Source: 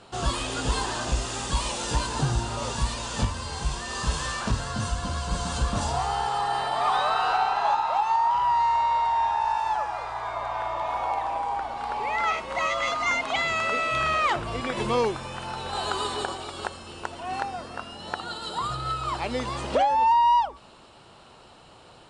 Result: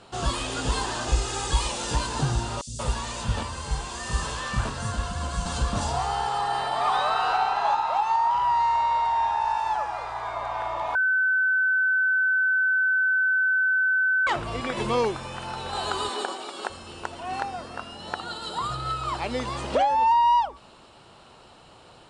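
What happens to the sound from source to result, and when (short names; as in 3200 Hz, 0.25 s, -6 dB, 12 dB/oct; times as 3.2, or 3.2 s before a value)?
1.08–1.67 comb 2.4 ms
2.61–5.46 three bands offset in time highs, lows, mids 60/180 ms, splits 230/4700 Hz
10.95–14.27 bleep 1520 Hz -19 dBFS
16.09–16.7 HPF 220 Hz 24 dB/oct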